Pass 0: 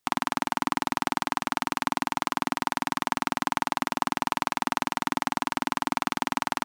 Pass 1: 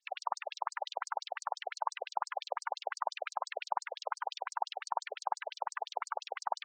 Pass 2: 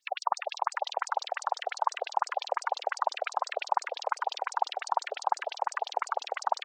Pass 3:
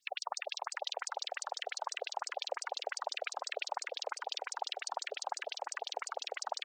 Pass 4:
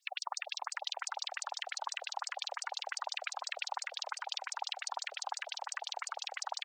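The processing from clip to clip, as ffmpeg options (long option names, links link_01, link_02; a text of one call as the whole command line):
ffmpeg -i in.wav -af "aeval=exprs='(tanh(15.8*val(0)+0.7)-tanh(0.7))/15.8':channel_layout=same,afftfilt=real='re*between(b*sr/1024,550*pow(6400/550,0.5+0.5*sin(2*PI*5.8*pts/sr))/1.41,550*pow(6400/550,0.5+0.5*sin(2*PI*5.8*pts/sr))*1.41)':imag='im*between(b*sr/1024,550*pow(6400/550,0.5+0.5*sin(2*PI*5.8*pts/sr))/1.41,550*pow(6400/550,0.5+0.5*sin(2*PI*5.8*pts/sr))*1.41)':win_size=1024:overlap=0.75,volume=5.5dB" out.wav
ffmpeg -i in.wav -filter_complex "[0:a]asplit=6[link_01][link_02][link_03][link_04][link_05][link_06];[link_02]adelay=273,afreqshift=-38,volume=-20.5dB[link_07];[link_03]adelay=546,afreqshift=-76,volume=-24.8dB[link_08];[link_04]adelay=819,afreqshift=-114,volume=-29.1dB[link_09];[link_05]adelay=1092,afreqshift=-152,volume=-33.4dB[link_10];[link_06]adelay=1365,afreqshift=-190,volume=-37.7dB[link_11];[link_01][link_07][link_08][link_09][link_10][link_11]amix=inputs=6:normalize=0,volume=7dB" out.wav
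ffmpeg -i in.wav -af "equalizer=frequency=990:width_type=o:width=1.5:gain=-14.5,volume=1dB" out.wav
ffmpeg -i in.wav -af "highpass=frequency=760:width=0.5412,highpass=frequency=760:width=1.3066,aecho=1:1:970:0.15,volume=1dB" out.wav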